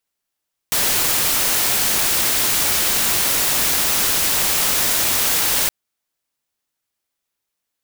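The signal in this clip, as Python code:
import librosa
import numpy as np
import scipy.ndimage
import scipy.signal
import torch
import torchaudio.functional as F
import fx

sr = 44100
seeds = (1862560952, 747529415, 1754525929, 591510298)

y = fx.noise_colour(sr, seeds[0], length_s=4.97, colour='white', level_db=-18.0)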